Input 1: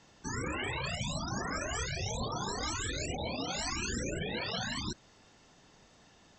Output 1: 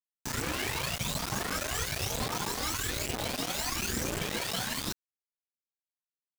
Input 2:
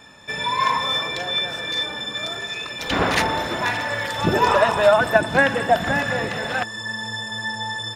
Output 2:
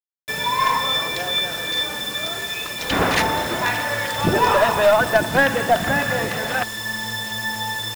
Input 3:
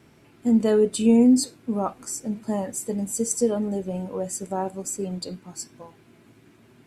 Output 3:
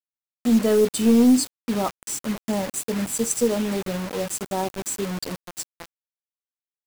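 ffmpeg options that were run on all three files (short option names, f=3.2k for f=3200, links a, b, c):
-af "aeval=exprs='0.891*(cos(1*acos(clip(val(0)/0.891,-1,1)))-cos(1*PI/2))+0.0355*(cos(3*acos(clip(val(0)/0.891,-1,1)))-cos(3*PI/2))+0.0447*(cos(4*acos(clip(val(0)/0.891,-1,1)))-cos(4*PI/2))+0.112*(cos(5*acos(clip(val(0)/0.891,-1,1)))-cos(5*PI/2))':c=same,acrusher=bits=4:mix=0:aa=0.000001,volume=-2dB"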